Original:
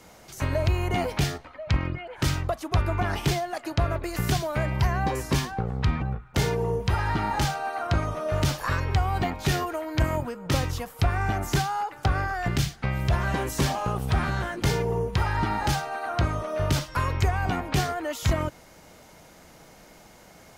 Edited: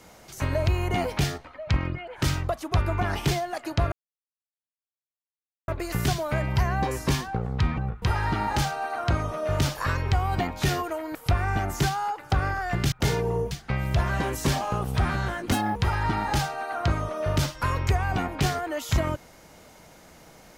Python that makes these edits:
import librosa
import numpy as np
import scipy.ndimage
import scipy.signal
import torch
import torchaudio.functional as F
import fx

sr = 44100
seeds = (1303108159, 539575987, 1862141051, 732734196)

y = fx.edit(x, sr, fx.insert_silence(at_s=3.92, length_s=1.76),
    fx.move(start_s=6.26, length_s=0.59, to_s=12.65),
    fx.cut(start_s=9.98, length_s=0.9),
    fx.speed_span(start_s=14.66, length_s=0.43, speed=1.82), tone=tone)